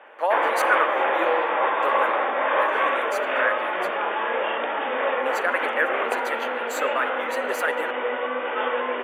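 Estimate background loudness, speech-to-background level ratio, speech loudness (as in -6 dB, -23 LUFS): -24.0 LUFS, -4.5 dB, -28.5 LUFS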